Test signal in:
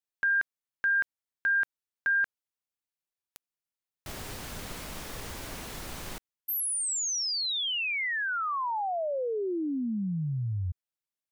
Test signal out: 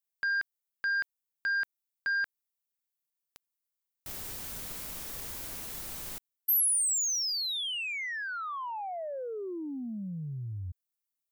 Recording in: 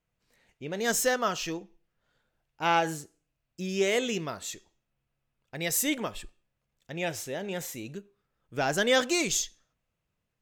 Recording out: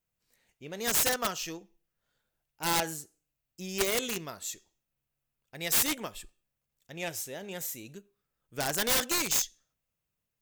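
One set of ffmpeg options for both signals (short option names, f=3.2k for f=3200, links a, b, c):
-af "aeval=exprs='0.251*(cos(1*acos(clip(val(0)/0.251,-1,1)))-cos(1*PI/2))+0.0631*(cos(3*acos(clip(val(0)/0.251,-1,1)))-cos(3*PI/2))':c=same,aemphasis=mode=production:type=50kf,aeval=exprs='(mod(14.1*val(0)+1,2)-1)/14.1':c=same,volume=5dB"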